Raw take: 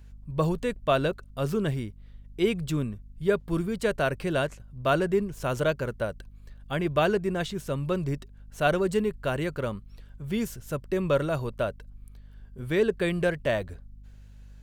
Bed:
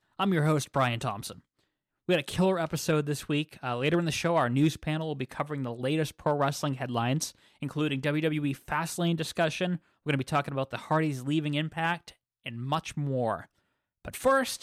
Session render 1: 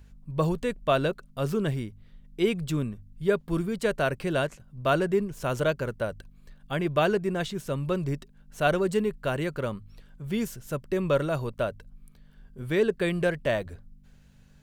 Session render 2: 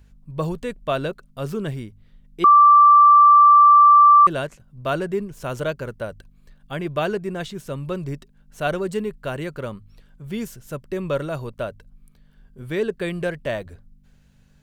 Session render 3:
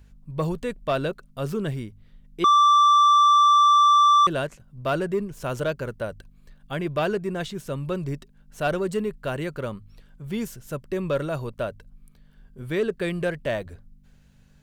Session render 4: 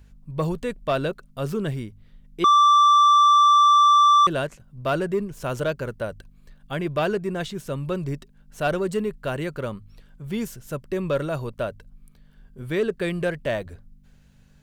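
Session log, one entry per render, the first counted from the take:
hum removal 50 Hz, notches 2
0:02.44–0:04.27: beep over 1,170 Hz −7.5 dBFS
soft clipping −14 dBFS, distortion −12 dB
level +1 dB

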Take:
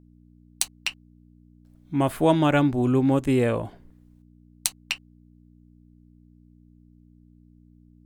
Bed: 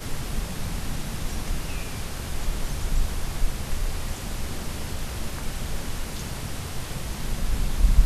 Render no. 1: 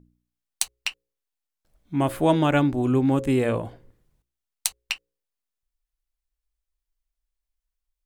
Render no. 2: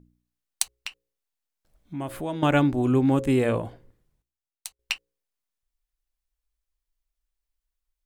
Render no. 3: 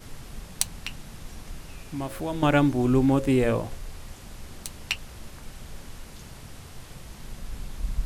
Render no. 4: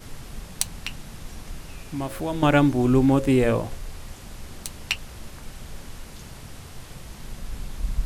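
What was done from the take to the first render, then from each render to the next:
hum removal 60 Hz, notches 9
0:00.62–0:02.43: downward compressor 2 to 1, threshold −36 dBFS; 0:03.58–0:04.79: fade out linear, to −17.5 dB
mix in bed −11 dB
level +2.5 dB; brickwall limiter −2 dBFS, peak gain reduction 2.5 dB

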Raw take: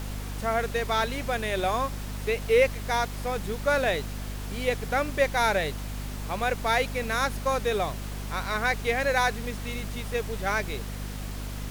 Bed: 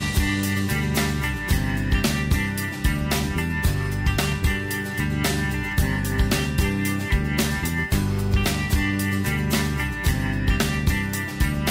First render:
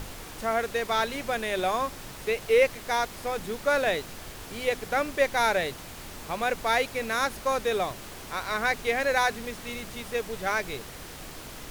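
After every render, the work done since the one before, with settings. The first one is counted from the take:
mains-hum notches 50/100/150/200/250 Hz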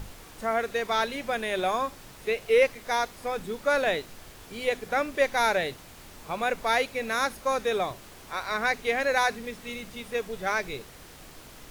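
noise reduction from a noise print 6 dB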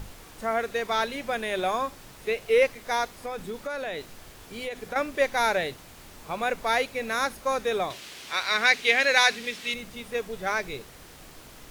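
0:03.21–0:04.96: downward compressor, threshold −29 dBFS
0:07.90–0:09.74: meter weighting curve D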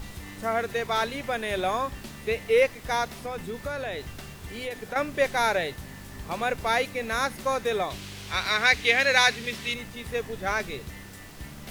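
mix in bed −20 dB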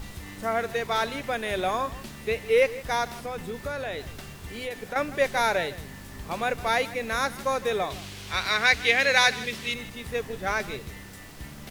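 single-tap delay 159 ms −17.5 dB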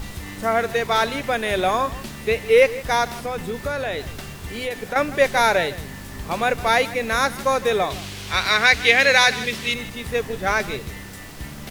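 level +6.5 dB
brickwall limiter −2 dBFS, peak gain reduction 3 dB

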